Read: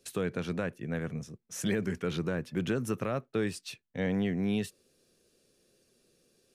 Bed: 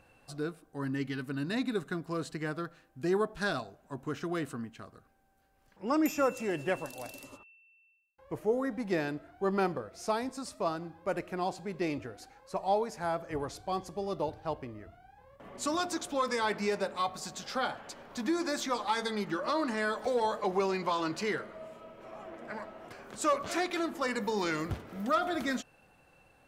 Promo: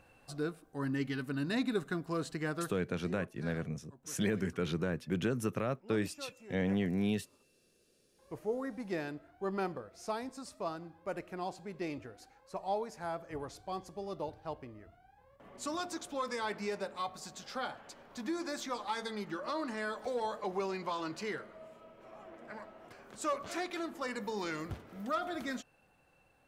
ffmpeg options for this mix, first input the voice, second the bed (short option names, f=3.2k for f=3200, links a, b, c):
-filter_complex "[0:a]adelay=2550,volume=-2dB[a];[1:a]volume=12.5dB,afade=t=out:st=2.74:d=0.2:silence=0.11885,afade=t=in:st=7.94:d=0.41:silence=0.223872[b];[a][b]amix=inputs=2:normalize=0"